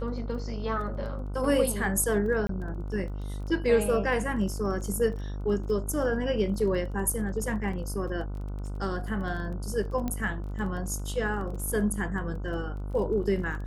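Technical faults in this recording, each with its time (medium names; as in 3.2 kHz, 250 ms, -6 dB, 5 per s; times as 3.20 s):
buzz 50 Hz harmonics 30 -34 dBFS
crackle 15 per s -38 dBFS
2.47–2.49 s: dropout 23 ms
10.08 s: pop -18 dBFS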